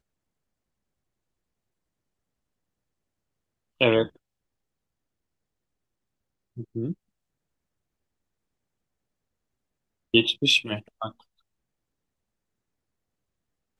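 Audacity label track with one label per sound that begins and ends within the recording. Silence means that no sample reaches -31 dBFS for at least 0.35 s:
3.810000	4.050000	sound
6.590000	6.920000	sound
10.140000	11.080000	sound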